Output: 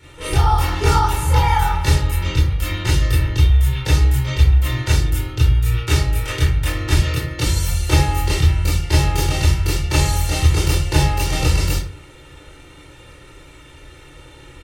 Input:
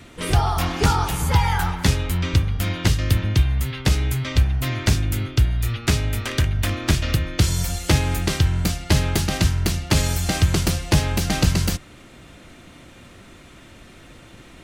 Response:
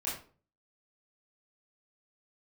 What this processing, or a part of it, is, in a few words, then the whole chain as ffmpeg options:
microphone above a desk: -filter_complex "[0:a]aecho=1:1:2.2:0.81[a];[1:a]atrim=start_sample=2205[b];[a][b]afir=irnorm=-1:irlink=0,asettb=1/sr,asplit=3[c][d][e];[c]atrim=end=7.024[f];[d]atrim=start=7.02:end=7.47,asetpts=PTS-STARTPTS,afade=t=in:d=0.004:c=qsin,afade=t=out:st=0.446:d=0.004:c=qsin,highpass=110[g];[e]atrim=start=7.466[h];[f][g]acrossfade=d=0.004:c1=hsin:c2=qsin[i];[i][h]acrossfade=d=0.004:c1=qsin:c2=hsin,volume=-3dB"

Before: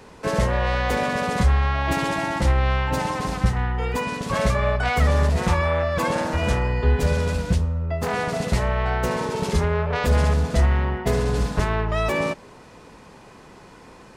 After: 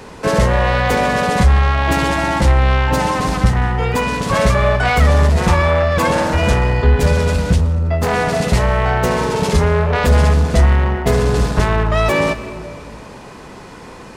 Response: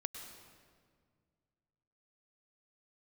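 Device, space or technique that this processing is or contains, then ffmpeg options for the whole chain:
saturated reverb return: -filter_complex "[0:a]asplit=2[a][b];[1:a]atrim=start_sample=2205[c];[b][c]afir=irnorm=-1:irlink=0,asoftclip=type=tanh:threshold=-27dB,volume=0dB[d];[a][d]amix=inputs=2:normalize=0,volume=5dB"

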